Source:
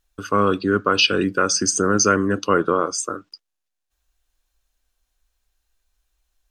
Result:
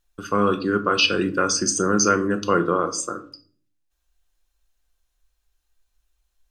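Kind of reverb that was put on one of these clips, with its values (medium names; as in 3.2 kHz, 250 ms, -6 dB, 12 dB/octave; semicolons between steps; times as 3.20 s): simulated room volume 430 m³, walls furnished, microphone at 0.84 m; trim -2.5 dB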